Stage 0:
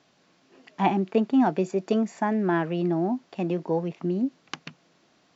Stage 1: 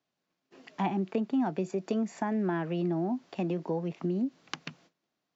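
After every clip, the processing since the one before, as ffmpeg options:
ffmpeg -i in.wav -filter_complex "[0:a]asplit=2[link_01][link_02];[link_02]acompressor=threshold=-31dB:ratio=6,volume=-1dB[link_03];[link_01][link_03]amix=inputs=2:normalize=0,agate=range=-21dB:threshold=-53dB:ratio=16:detection=peak,acrossover=split=200[link_04][link_05];[link_05]acompressor=threshold=-25dB:ratio=2.5[link_06];[link_04][link_06]amix=inputs=2:normalize=0,volume=-5.5dB" out.wav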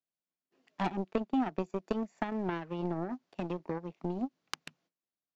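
ffmpeg -i in.wav -af "aeval=exprs='0.2*(cos(1*acos(clip(val(0)/0.2,-1,1)))-cos(1*PI/2))+0.0251*(cos(7*acos(clip(val(0)/0.2,-1,1)))-cos(7*PI/2))':channel_layout=same" out.wav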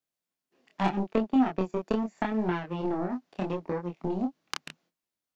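ffmpeg -i in.wav -af "flanger=delay=22.5:depth=5.9:speed=0.79,volume=8dB" out.wav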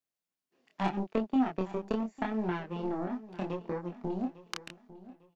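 ffmpeg -i in.wav -af "aecho=1:1:851|1702|2553:0.141|0.048|0.0163,volume=-4dB" out.wav

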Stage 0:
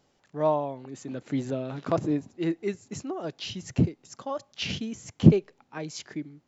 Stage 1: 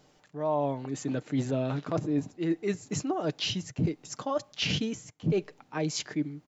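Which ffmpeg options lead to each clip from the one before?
ffmpeg -i in.wav -af "aecho=1:1:6.6:0.35,areverse,acompressor=threshold=-30dB:ratio=16,areverse,volume=5.5dB" out.wav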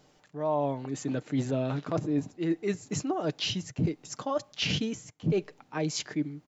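ffmpeg -i in.wav -af anull out.wav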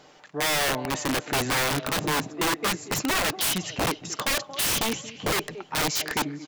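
ffmpeg -i in.wav -filter_complex "[0:a]aecho=1:1:228|456|684|912:0.1|0.048|0.023|0.0111,asplit=2[link_01][link_02];[link_02]highpass=frequency=720:poles=1,volume=15dB,asoftclip=type=tanh:threshold=-15.5dB[link_03];[link_01][link_03]amix=inputs=2:normalize=0,lowpass=frequency=3300:poles=1,volume=-6dB,aeval=exprs='(mod(15.8*val(0)+1,2)-1)/15.8':channel_layout=same,volume=4dB" out.wav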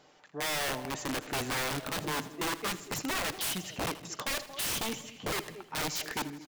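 ffmpeg -i in.wav -af "aecho=1:1:80|160|240|320|400:0.158|0.0824|0.0429|0.0223|0.0116,volume=-8dB" out.wav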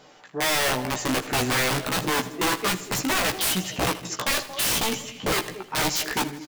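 ffmpeg -i in.wav -filter_complex "[0:a]asplit=2[link_01][link_02];[link_02]adelay=16,volume=-5dB[link_03];[link_01][link_03]amix=inputs=2:normalize=0,volume=8dB" out.wav

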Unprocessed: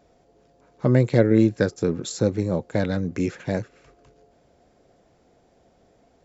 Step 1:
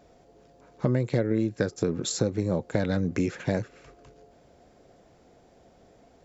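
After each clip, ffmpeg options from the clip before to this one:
ffmpeg -i in.wav -af "acompressor=threshold=-24dB:ratio=6,volume=2.5dB" out.wav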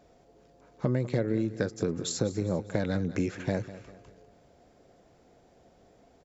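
ffmpeg -i in.wav -af "aecho=1:1:199|398|597|796:0.168|0.0705|0.0296|0.0124,volume=-3dB" out.wav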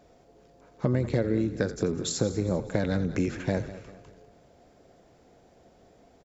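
ffmpeg -i in.wav -filter_complex "[0:a]asplit=4[link_01][link_02][link_03][link_04];[link_02]adelay=85,afreqshift=-39,volume=-14dB[link_05];[link_03]adelay=170,afreqshift=-78,volume=-23.1dB[link_06];[link_04]adelay=255,afreqshift=-117,volume=-32.2dB[link_07];[link_01][link_05][link_06][link_07]amix=inputs=4:normalize=0,volume=2dB" out.wav

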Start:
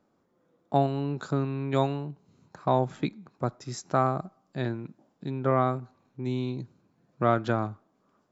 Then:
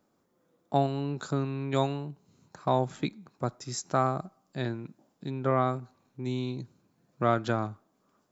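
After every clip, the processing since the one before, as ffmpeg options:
ffmpeg -i in.wav -af "highshelf=frequency=4900:gain=10.5,volume=-2dB" out.wav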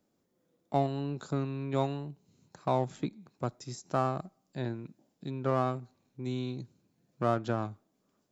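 ffmpeg -i in.wav -filter_complex "[0:a]acrossover=split=1400[link_01][link_02];[link_01]adynamicsmooth=sensitivity=6.5:basefreq=1000[link_03];[link_02]alimiter=level_in=10dB:limit=-24dB:level=0:latency=1:release=167,volume=-10dB[link_04];[link_03][link_04]amix=inputs=2:normalize=0,volume=-2.5dB" out.wav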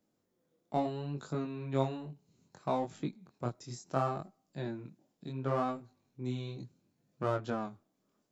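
ffmpeg -i in.wav -af "flanger=delay=19:depth=6.7:speed=0.69" out.wav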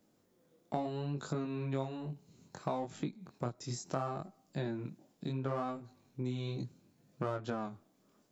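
ffmpeg -i in.wav -af "acompressor=threshold=-42dB:ratio=4,volume=7.5dB" out.wav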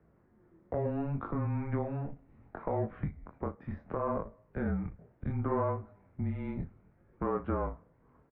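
ffmpeg -i in.wav -filter_complex "[0:a]alimiter=level_in=3dB:limit=-24dB:level=0:latency=1:release=136,volume=-3dB,asplit=2[link_01][link_02];[link_02]adelay=38,volume=-13dB[link_03];[link_01][link_03]amix=inputs=2:normalize=0,highpass=frequency=210:width_type=q:width=0.5412,highpass=frequency=210:width_type=q:width=1.307,lowpass=frequency=2100:width_type=q:width=0.5176,lowpass=frequency=2100:width_type=q:width=0.7071,lowpass=frequency=2100:width_type=q:width=1.932,afreqshift=-150,volume=7.5dB" out.wav

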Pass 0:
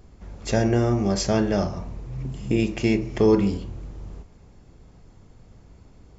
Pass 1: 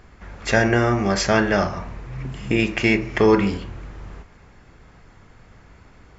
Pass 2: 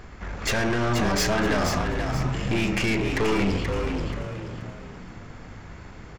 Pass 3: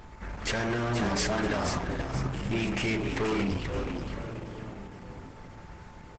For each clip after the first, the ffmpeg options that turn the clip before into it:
ffmpeg -i in.wav -af "equalizer=frequency=1700:width_type=o:width=1.9:gain=14.5" out.wav
ffmpeg -i in.wav -filter_complex "[0:a]alimiter=limit=-13.5dB:level=0:latency=1:release=145,aeval=exprs='(tanh(25.1*val(0)+0.45)-tanh(0.45))/25.1':channel_layout=same,asplit=2[link_01][link_02];[link_02]asplit=4[link_03][link_04][link_05][link_06];[link_03]adelay=480,afreqshift=67,volume=-6dB[link_07];[link_04]adelay=960,afreqshift=134,volume=-15.6dB[link_08];[link_05]adelay=1440,afreqshift=201,volume=-25.3dB[link_09];[link_06]adelay=1920,afreqshift=268,volume=-34.9dB[link_10];[link_07][link_08][link_09][link_10]amix=inputs=4:normalize=0[link_11];[link_01][link_11]amix=inputs=2:normalize=0,volume=7dB" out.wav
ffmpeg -i in.wav -filter_complex "[0:a]asplit=2[link_01][link_02];[link_02]adelay=1341,volume=-17dB,highshelf=frequency=4000:gain=-30.2[link_03];[link_01][link_03]amix=inputs=2:normalize=0,aeval=exprs='val(0)+0.00398*sin(2*PI*880*n/s)':channel_layout=same,volume=-4dB" -ar 48000 -c:a libopus -b:a 12k out.opus

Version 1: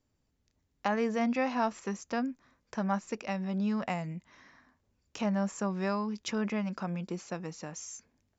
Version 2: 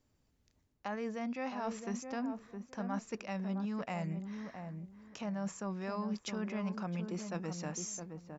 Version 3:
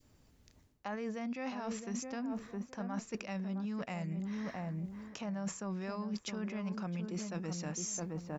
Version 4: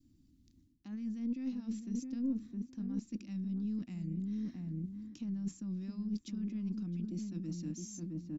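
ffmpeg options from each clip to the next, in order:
ffmpeg -i in.wav -filter_complex "[0:a]areverse,acompressor=threshold=-38dB:ratio=6,areverse,asplit=2[link_01][link_02];[link_02]adelay=664,lowpass=frequency=850:poles=1,volume=-5.5dB,asplit=2[link_03][link_04];[link_04]adelay=664,lowpass=frequency=850:poles=1,volume=0.23,asplit=2[link_05][link_06];[link_06]adelay=664,lowpass=frequency=850:poles=1,volume=0.23[link_07];[link_01][link_03][link_05][link_07]amix=inputs=4:normalize=0,volume=2dB" out.wav
ffmpeg -i in.wav -af "adynamicequalizer=threshold=0.00282:dfrequency=860:dqfactor=0.79:tfrequency=860:tqfactor=0.79:attack=5:release=100:ratio=0.375:range=2.5:mode=cutabove:tftype=bell,areverse,acompressor=threshold=-46dB:ratio=6,areverse,volume=9.5dB" out.wav
ffmpeg -i in.wav -af "firequalizer=gain_entry='entry(140,0);entry(300,9);entry(460,-25);entry(3800,-6);entry(7100,-8)':delay=0.05:min_phase=1,aeval=exprs='0.0891*(cos(1*acos(clip(val(0)/0.0891,-1,1)))-cos(1*PI/2))+0.00398*(cos(4*acos(clip(val(0)/0.0891,-1,1)))-cos(4*PI/2))':channel_layout=same,volume=-2dB" out.wav

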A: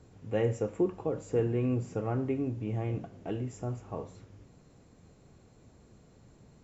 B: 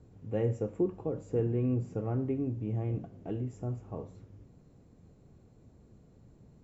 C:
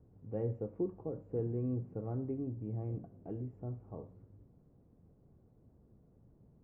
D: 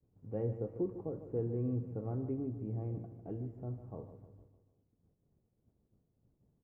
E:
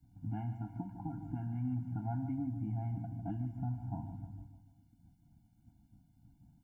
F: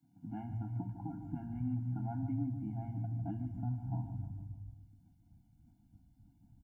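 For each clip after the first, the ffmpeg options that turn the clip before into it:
ffmpeg -i in.wav -af "tiltshelf=frequency=690:gain=5.5,volume=-4.5dB" out.wav
ffmpeg -i in.wav -af "lowpass=1100,volume=-6dB" out.wav
ffmpeg -i in.wav -af "agate=range=-33dB:threshold=-54dB:ratio=3:detection=peak,aecho=1:1:151|302|453|604|755:0.251|0.126|0.0628|0.0314|0.0157" out.wav
ffmpeg -i in.wav -filter_complex "[0:a]acrossover=split=700[link_01][link_02];[link_01]acompressor=threshold=-45dB:ratio=6[link_03];[link_03][link_02]amix=inputs=2:normalize=0,afftfilt=real='re*eq(mod(floor(b*sr/1024/340),2),0)':imag='im*eq(mod(floor(b*sr/1024/340),2),0)':win_size=1024:overlap=0.75,volume=11dB" out.wav
ffmpeg -i in.wav -filter_complex "[0:a]lowshelf=frequency=400:gain=5.5,acrossover=split=150[link_01][link_02];[link_01]adelay=270[link_03];[link_03][link_02]amix=inputs=2:normalize=0,volume=-3dB" out.wav

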